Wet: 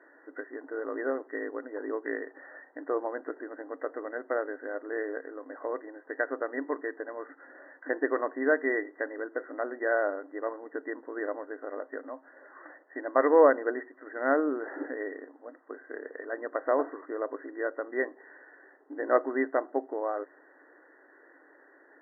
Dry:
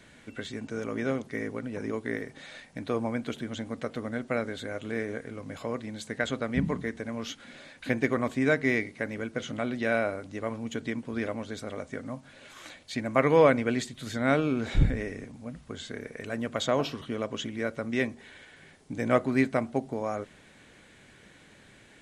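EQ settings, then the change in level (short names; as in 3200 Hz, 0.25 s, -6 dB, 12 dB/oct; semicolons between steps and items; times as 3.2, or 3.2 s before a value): brick-wall FIR band-pass 270–2000 Hz; air absorption 62 m; +1.0 dB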